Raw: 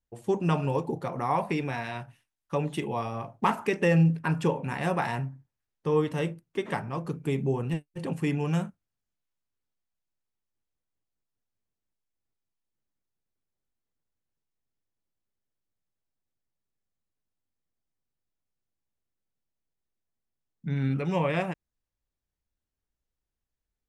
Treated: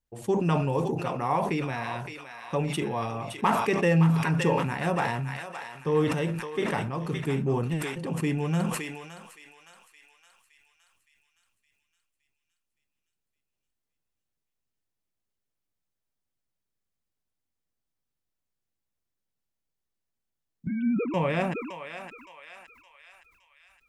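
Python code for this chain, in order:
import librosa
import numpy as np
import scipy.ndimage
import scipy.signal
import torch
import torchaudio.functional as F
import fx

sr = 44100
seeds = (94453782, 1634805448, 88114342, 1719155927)

y = fx.sine_speech(x, sr, at=(20.67, 21.14))
y = fx.echo_thinned(y, sr, ms=566, feedback_pct=59, hz=1200.0, wet_db=-6.5)
y = fx.sustainer(y, sr, db_per_s=41.0)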